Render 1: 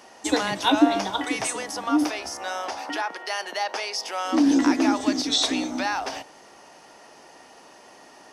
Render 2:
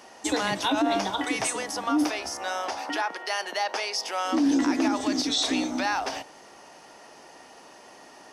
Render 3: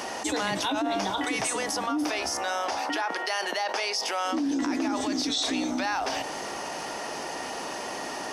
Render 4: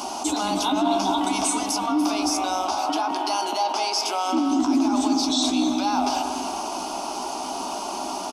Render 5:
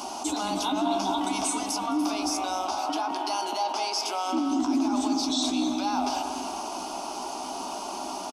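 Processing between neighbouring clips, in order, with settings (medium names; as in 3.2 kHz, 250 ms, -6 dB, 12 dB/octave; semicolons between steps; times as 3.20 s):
peak limiter -15.5 dBFS, peak gain reduction 10 dB
level flattener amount 70%; trim -6 dB
static phaser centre 490 Hz, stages 6; doubling 16 ms -11.5 dB; on a send at -4 dB: reverberation RT60 1.5 s, pre-delay 180 ms; on the sum: trim +5.5 dB
delay 213 ms -21 dB; trim -4.5 dB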